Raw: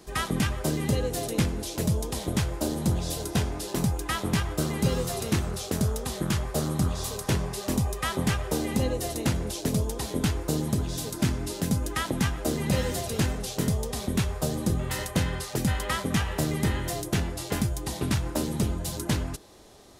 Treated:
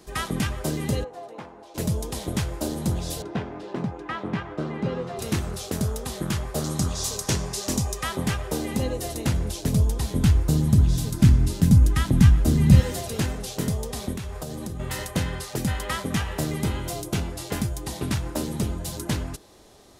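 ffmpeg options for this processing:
-filter_complex "[0:a]asplit=3[a][b][c];[a]afade=t=out:st=1.03:d=0.02[d];[b]bandpass=f=870:t=q:w=2,afade=t=in:st=1.03:d=0.02,afade=t=out:st=1.74:d=0.02[e];[c]afade=t=in:st=1.74:d=0.02[f];[d][e][f]amix=inputs=3:normalize=0,asettb=1/sr,asplit=3[g][h][i];[g]atrim=end=3.224[j];[h]atrim=start=3.22:end=5.19,asetpts=PTS-STARTPTS,afade=t=in:d=0.004:c=qsin,afade=t=out:st=1.966:d=0.004:c=qsin,highpass=150,lowpass=2.1k[k];[i]atrim=start=5.186[l];[j][k]acrossfade=d=0.004:c1=hsin:c2=qsin[m];[m][l]acrossfade=d=0.004:c1=qsin:c2=hsin,asettb=1/sr,asplit=3[n][o][p];[n]atrim=end=6.644[q];[o]atrim=start=6.64:end=8.03,asetpts=PTS-STARTPTS,afade=t=in:d=0.004:c=qsin,afade=t=out:st=1.386:d=0.004:c=qsin,equalizer=f=6.2k:t=o:w=1.2:g=9.5[r];[p]atrim=start=8.026[s];[q][r]acrossfade=d=0.004:c1=hsin:c2=qsin[t];[t][s]acrossfade=d=0.004:c1=qsin:c2=hsin,asettb=1/sr,asplit=3[u][v][w];[u]atrim=end=9.014[x];[v]atrim=start=9.01:end=12.8,asetpts=PTS-STARTPTS,afade=t=in:d=0.004:c=qsin,afade=t=out:st=3.786:d=0.004:c=qsin,asubboost=boost=8.5:cutoff=190[y];[w]atrim=start=12.796[z];[x][y]acrossfade=d=0.004:c1=hsin:c2=qsin[aa];[aa][z]acrossfade=d=0.004:c1=qsin:c2=hsin,asettb=1/sr,asplit=3[ab][ac][ad];[ab]atrim=end=14.134[ae];[ac]atrim=start=14.13:end=14.8,asetpts=PTS-STARTPTS,afade=t=in:d=0.004:c=qsin,afade=t=out:st=0.666:d=0.004:c=qsin,acompressor=threshold=-29dB:ratio=6:attack=3.2:release=140:knee=1:detection=peak[af];[ad]atrim=start=14.796[ag];[ae][af]acrossfade=d=0.004:c1=hsin:c2=qsin[ah];[ah][ag]acrossfade=d=0.004:c1=qsin:c2=hsin,asettb=1/sr,asplit=3[ai][aj][ak];[ai]atrim=end=16.604[al];[aj]atrim=start=16.6:end=17.32,asetpts=PTS-STARTPTS,afade=t=in:d=0.004:c=qsin,afade=t=out:st=0.716:d=0.004:c=qsin,bandreject=f=1.8k:w=6.1[am];[ak]atrim=start=17.316[an];[al][am]acrossfade=d=0.004:c1=hsin:c2=qsin[ao];[ao][an]acrossfade=d=0.004:c1=qsin:c2=hsin"

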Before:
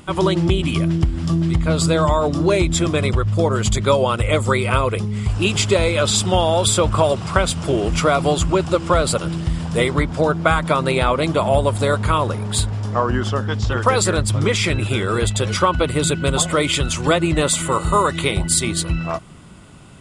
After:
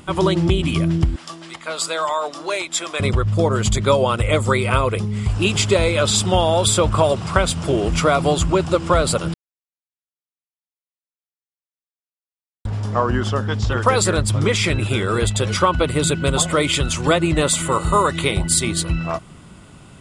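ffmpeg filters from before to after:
-filter_complex "[0:a]asettb=1/sr,asplit=3[a][b][c];[a]atrim=end=1.164[d];[b]atrim=start=1.16:end=3,asetpts=PTS-STARTPTS,afade=t=in:d=0.004:c=qsin,afade=t=out:st=1.836:d=0.004:c=qsin,highpass=760[e];[c]atrim=start=2.996[f];[d][e]acrossfade=d=0.004:c1=hsin:c2=qsin[g];[g][f]acrossfade=d=0.004:c1=qsin:c2=hsin,asplit=3[h][i][j];[h]atrim=end=9.34,asetpts=PTS-STARTPTS,afade=t=out:st=9.336:d=0.004:c=hsin[k];[i]atrim=start=9.34:end=12.65,asetpts=PTS-STARTPTS,volume=0[l];[j]atrim=start=12.65,asetpts=PTS-STARTPTS,afade=t=in:d=0.004:c=hsin[m];[k][l][m]concat=n=3:v=0:a=1"

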